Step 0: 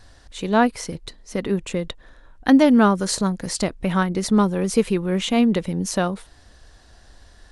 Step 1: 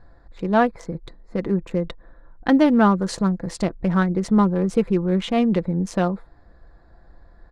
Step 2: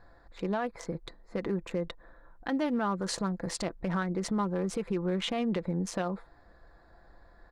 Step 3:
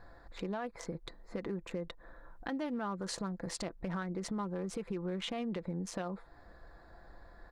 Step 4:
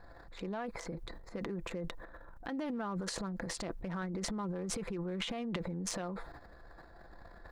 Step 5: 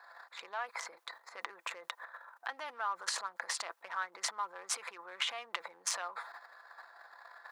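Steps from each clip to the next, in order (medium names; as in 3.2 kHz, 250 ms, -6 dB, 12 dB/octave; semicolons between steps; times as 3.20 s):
local Wiener filter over 15 samples; low-pass 2.7 kHz 6 dB/octave; comb 5.9 ms, depth 37%
compression, threshold -19 dBFS, peak gain reduction 8 dB; bass shelf 340 Hz -9.5 dB; peak limiter -22.5 dBFS, peak gain reduction 9 dB
compression 2:1, threshold -44 dBFS, peak gain reduction 10 dB; trim +2 dB
transient shaper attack -1 dB, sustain +12 dB; trim -1.5 dB
ladder high-pass 810 Hz, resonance 30%; trim +11 dB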